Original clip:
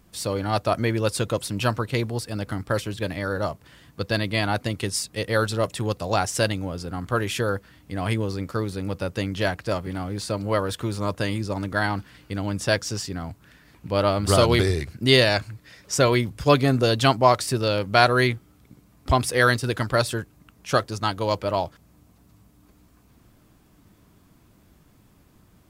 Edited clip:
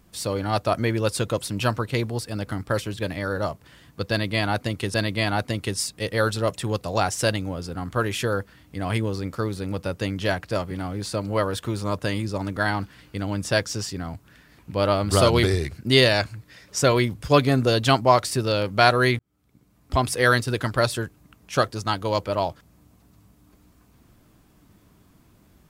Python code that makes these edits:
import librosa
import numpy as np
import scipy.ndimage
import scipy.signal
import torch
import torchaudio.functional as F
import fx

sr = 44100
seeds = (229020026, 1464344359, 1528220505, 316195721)

y = fx.edit(x, sr, fx.repeat(start_s=4.1, length_s=0.84, count=2),
    fx.fade_in_span(start_s=18.35, length_s=0.96), tone=tone)